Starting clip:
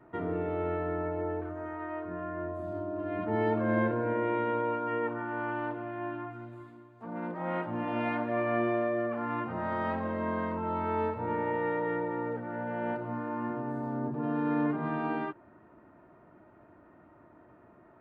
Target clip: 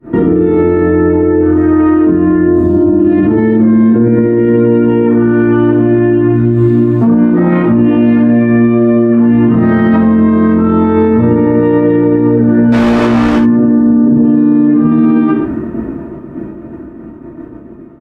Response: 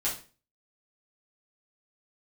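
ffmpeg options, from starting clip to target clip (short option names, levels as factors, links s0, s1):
-filter_complex "[0:a]dynaudnorm=f=260:g=31:m=2.37,agate=range=0.0562:threshold=0.00178:ratio=16:detection=peak,lowshelf=f=480:t=q:w=1.5:g=12,asplit=2[s0][s1];[s1]adelay=110.8,volume=0.141,highshelf=f=4000:g=-2.49[s2];[s0][s2]amix=inputs=2:normalize=0,acompressor=threshold=0.0501:ratio=6,asettb=1/sr,asplit=3[s3][s4][s5];[s3]atrim=end=12.724[s6];[s4]atrim=start=12.72:end=13.36,asetpts=PTS-STARTPTS,afade=t=in:d=0.004:c=qsin,afade=t=out:st=0.636:d=0.004:c=qsin,asplit=2[s7][s8];[s8]highpass=f=720:p=1,volume=70.8,asoftclip=type=tanh:threshold=0.0891[s9];[s7][s9]amix=inputs=2:normalize=0,lowpass=f=1900:p=1,volume=0.501[s10];[s5]atrim=start=13.356[s11];[s6][s10]acrossfade=d=0.004:c1=hsin:c2=qsin[s12];[s12][s11]acrossfade=d=0.004:c1=qsin:c2=hsin[s13];[1:a]atrim=start_sample=2205,atrim=end_sample=3969,asetrate=36162,aresample=44100[s14];[s13][s14]afir=irnorm=-1:irlink=0,alimiter=level_in=10.6:limit=0.891:release=50:level=0:latency=1,volume=0.891" -ar 48000 -c:a libopus -b:a 64k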